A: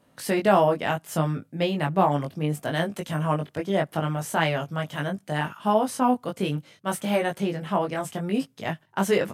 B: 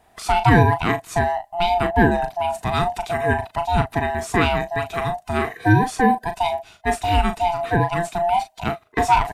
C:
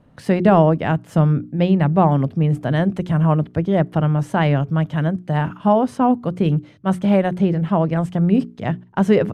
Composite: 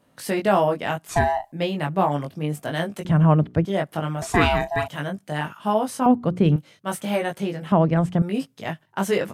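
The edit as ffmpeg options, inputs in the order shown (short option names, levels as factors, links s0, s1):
-filter_complex "[1:a]asplit=2[s0][s1];[2:a]asplit=3[s2][s3][s4];[0:a]asplit=6[s5][s6][s7][s8][s9][s10];[s5]atrim=end=1.092[s11];[s0]atrim=start=1.088:end=1.522[s12];[s6]atrim=start=1.518:end=3.052[s13];[s2]atrim=start=3.048:end=3.652[s14];[s7]atrim=start=3.648:end=4.222[s15];[s1]atrim=start=4.218:end=4.882[s16];[s8]atrim=start=4.878:end=6.062[s17];[s3]atrim=start=6.058:end=6.562[s18];[s9]atrim=start=6.558:end=7.722[s19];[s4]atrim=start=7.718:end=8.222[s20];[s10]atrim=start=8.218[s21];[s11][s12]acrossfade=d=0.004:c1=hsin:c2=hsin[s22];[s22][s13]acrossfade=d=0.004:c1=hsin:c2=hsin[s23];[s23][s14]acrossfade=d=0.004:c1=hsin:c2=hsin[s24];[s24][s15]acrossfade=d=0.004:c1=hsin:c2=hsin[s25];[s25][s16]acrossfade=d=0.004:c1=hsin:c2=hsin[s26];[s26][s17]acrossfade=d=0.004:c1=hsin:c2=hsin[s27];[s27][s18]acrossfade=d=0.004:c1=hsin:c2=hsin[s28];[s28][s19]acrossfade=d=0.004:c1=hsin:c2=hsin[s29];[s29][s20]acrossfade=d=0.004:c1=hsin:c2=hsin[s30];[s30][s21]acrossfade=d=0.004:c1=hsin:c2=hsin"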